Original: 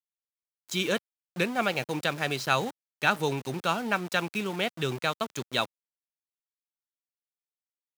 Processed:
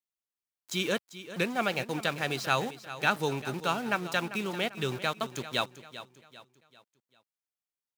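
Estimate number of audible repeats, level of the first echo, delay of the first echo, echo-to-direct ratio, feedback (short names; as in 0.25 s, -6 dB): 3, -14.0 dB, 0.394 s, -13.0 dB, 41%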